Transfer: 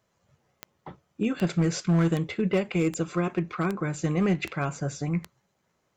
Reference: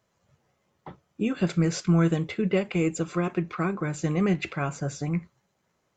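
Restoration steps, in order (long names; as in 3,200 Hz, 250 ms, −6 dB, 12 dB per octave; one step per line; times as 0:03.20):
clipped peaks rebuilt −17.5 dBFS
click removal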